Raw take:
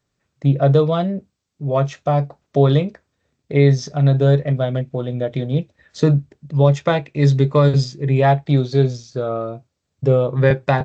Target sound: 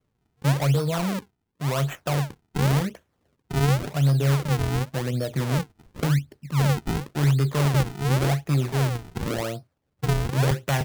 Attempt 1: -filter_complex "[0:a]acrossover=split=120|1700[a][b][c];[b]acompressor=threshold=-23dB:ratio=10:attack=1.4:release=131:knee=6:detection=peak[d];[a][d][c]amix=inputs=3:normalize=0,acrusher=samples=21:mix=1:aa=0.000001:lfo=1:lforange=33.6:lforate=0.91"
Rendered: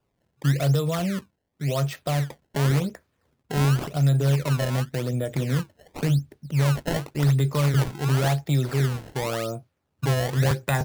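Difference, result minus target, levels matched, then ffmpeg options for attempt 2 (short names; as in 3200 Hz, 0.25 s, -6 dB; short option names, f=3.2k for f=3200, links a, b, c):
decimation with a swept rate: distortion -5 dB
-filter_complex "[0:a]acrossover=split=120|1700[a][b][c];[b]acompressor=threshold=-23dB:ratio=10:attack=1.4:release=131:knee=6:detection=peak[d];[a][d][c]amix=inputs=3:normalize=0,acrusher=samples=45:mix=1:aa=0.000001:lfo=1:lforange=72:lforate=0.91"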